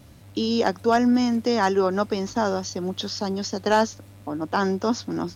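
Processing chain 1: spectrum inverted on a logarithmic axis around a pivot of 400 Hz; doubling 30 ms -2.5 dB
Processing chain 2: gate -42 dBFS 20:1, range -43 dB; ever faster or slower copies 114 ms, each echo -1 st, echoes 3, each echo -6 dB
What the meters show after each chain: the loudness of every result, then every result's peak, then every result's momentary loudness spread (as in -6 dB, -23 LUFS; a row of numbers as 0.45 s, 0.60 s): -23.5 LUFS, -22.5 LUFS; -7.0 dBFS, -7.5 dBFS; 11 LU, 8 LU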